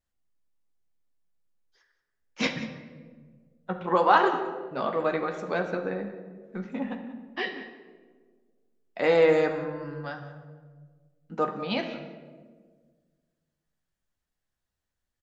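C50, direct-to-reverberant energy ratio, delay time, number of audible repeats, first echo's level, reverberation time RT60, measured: 7.5 dB, 3.0 dB, 185 ms, 1, −17.0 dB, 1.6 s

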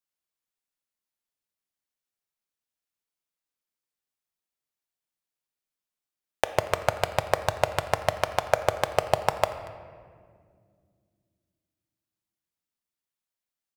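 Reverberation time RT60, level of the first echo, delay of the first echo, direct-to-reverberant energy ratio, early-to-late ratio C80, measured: 2.1 s, −21.5 dB, 235 ms, 9.5 dB, 12.0 dB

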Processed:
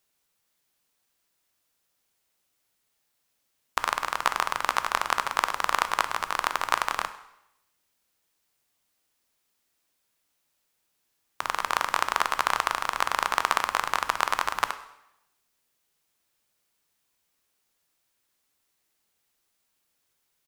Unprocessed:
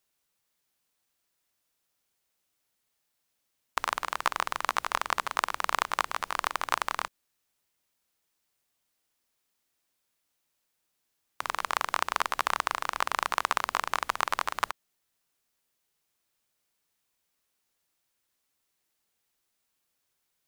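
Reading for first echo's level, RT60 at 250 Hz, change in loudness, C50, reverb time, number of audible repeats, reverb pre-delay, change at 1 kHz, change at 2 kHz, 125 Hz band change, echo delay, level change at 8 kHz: −21.5 dB, 0.95 s, +3.5 dB, 13.0 dB, 0.85 s, 1, 7 ms, +3.5 dB, +3.5 dB, +3.5 dB, 100 ms, +3.5 dB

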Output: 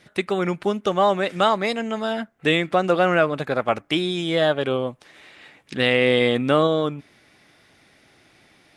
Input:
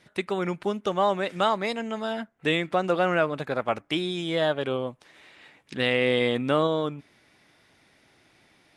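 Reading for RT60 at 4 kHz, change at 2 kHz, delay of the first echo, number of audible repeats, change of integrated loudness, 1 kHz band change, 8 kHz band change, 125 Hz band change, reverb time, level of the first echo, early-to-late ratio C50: no reverb audible, +5.0 dB, no echo audible, no echo audible, +5.0 dB, +4.5 dB, can't be measured, +5.0 dB, no reverb audible, no echo audible, no reverb audible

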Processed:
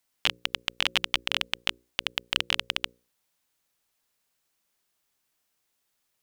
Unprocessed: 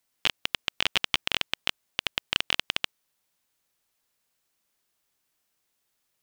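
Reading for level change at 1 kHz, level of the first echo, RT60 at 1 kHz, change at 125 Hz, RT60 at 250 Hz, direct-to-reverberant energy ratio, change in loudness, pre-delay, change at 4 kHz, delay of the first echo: 0.0 dB, no echo audible, no reverb audible, −1.0 dB, no reverb audible, no reverb audible, 0.0 dB, no reverb audible, 0.0 dB, no echo audible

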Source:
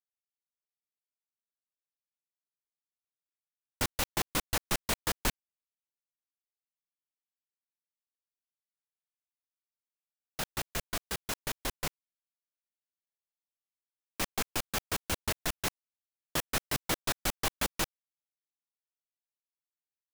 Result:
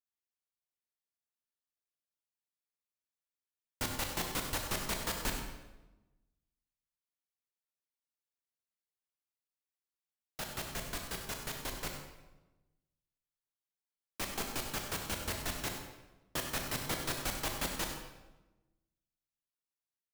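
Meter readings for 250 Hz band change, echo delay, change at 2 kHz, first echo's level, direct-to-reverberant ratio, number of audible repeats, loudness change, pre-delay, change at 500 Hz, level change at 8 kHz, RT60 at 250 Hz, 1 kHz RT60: −2.5 dB, 97 ms, −3.5 dB, −10.5 dB, 2.0 dB, 1, −3.5 dB, 23 ms, −3.0 dB, −3.5 dB, 1.3 s, 1.0 s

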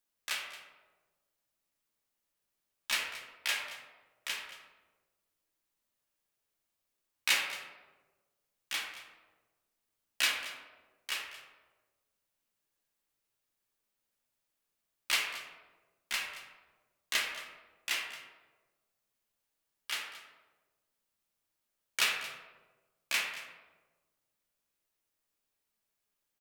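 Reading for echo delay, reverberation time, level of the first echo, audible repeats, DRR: 225 ms, 1.3 s, −15.5 dB, 1, 0.0 dB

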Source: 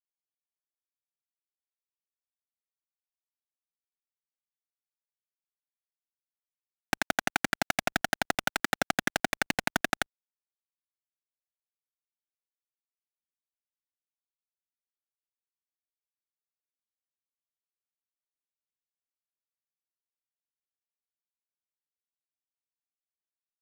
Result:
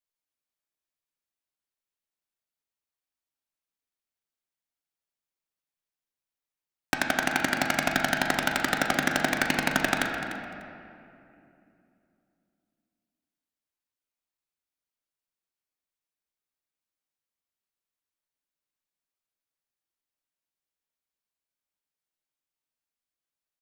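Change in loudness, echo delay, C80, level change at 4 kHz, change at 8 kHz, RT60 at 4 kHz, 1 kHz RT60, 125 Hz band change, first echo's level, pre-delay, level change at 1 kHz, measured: +4.0 dB, 297 ms, 4.0 dB, +3.5 dB, +2.5 dB, 1.5 s, 2.5 s, +5.0 dB, −12.5 dB, 3 ms, +3.5 dB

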